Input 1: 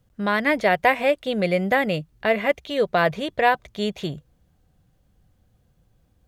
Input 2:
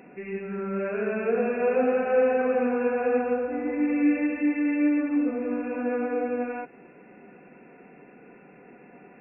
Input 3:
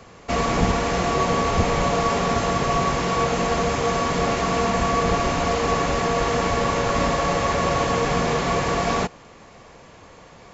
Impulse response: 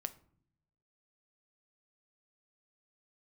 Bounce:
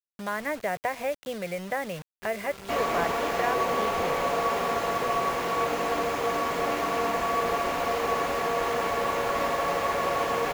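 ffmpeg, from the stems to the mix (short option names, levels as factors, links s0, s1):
-filter_complex "[0:a]acrossover=split=2800[s0][s1];[s1]acompressor=threshold=0.01:ratio=4:attack=1:release=60[s2];[s0][s2]amix=inputs=2:normalize=0,lowshelf=f=190:t=q:w=1.5:g=10.5,acrossover=split=95|1600[s3][s4][s5];[s3]acompressor=threshold=0.00316:ratio=4[s6];[s4]acompressor=threshold=0.1:ratio=4[s7];[s5]acompressor=threshold=0.0251:ratio=4[s8];[s6][s7][s8]amix=inputs=3:normalize=0,volume=0.531[s9];[1:a]adelay=1900,volume=0.2[s10];[2:a]adelay=2400,volume=0.631[s11];[s9][s10][s11]amix=inputs=3:normalize=0,bass=f=250:g=-3,treble=f=4000:g=-8,acrossover=split=300|3000[s12][s13][s14];[s12]acompressor=threshold=0.00501:ratio=3[s15];[s15][s13][s14]amix=inputs=3:normalize=0,acrusher=bits=6:mix=0:aa=0.000001"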